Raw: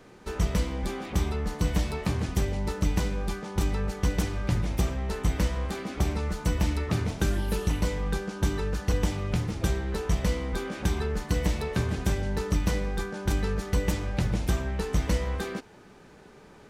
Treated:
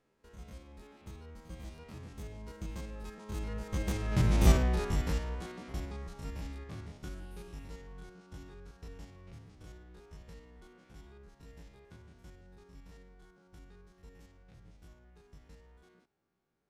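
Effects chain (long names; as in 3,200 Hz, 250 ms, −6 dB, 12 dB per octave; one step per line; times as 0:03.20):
spectrum averaged block by block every 50 ms
source passing by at 0:04.48, 25 m/s, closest 4.8 metres
level +5.5 dB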